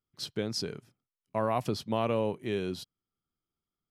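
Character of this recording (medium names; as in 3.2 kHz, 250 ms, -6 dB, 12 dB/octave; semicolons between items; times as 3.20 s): noise floor -93 dBFS; spectral tilt -4.5 dB/octave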